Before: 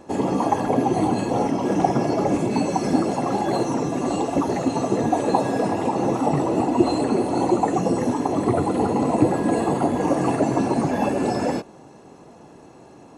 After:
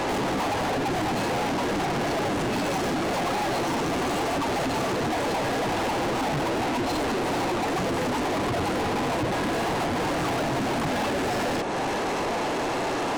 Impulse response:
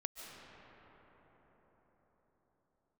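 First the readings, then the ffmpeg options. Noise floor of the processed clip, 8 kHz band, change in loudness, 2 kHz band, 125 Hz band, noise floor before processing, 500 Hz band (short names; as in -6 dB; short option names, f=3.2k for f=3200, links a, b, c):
-27 dBFS, +1.0 dB, -4.5 dB, +6.5 dB, -4.5 dB, -46 dBFS, -4.0 dB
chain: -filter_complex "[0:a]highshelf=f=6.2k:g=-12,acrossover=split=110[a][b];[b]acompressor=threshold=-35dB:ratio=10[c];[a][c]amix=inputs=2:normalize=0,asplit=2[d][e];[e]highpass=f=720:p=1,volume=43dB,asoftclip=type=tanh:threshold=-20dB[f];[d][f]amix=inputs=2:normalize=0,lowpass=f=7.5k:p=1,volume=-6dB"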